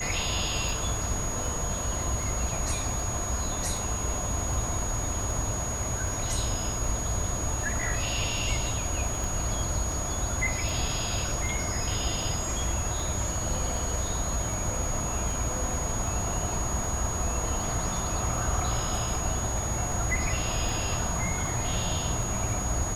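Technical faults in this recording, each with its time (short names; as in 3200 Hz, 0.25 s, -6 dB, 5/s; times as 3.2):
tick 78 rpm
tone 6700 Hz -33 dBFS
9.24 pop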